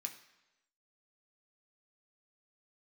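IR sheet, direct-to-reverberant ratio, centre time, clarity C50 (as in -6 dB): 3.0 dB, 13 ms, 11.0 dB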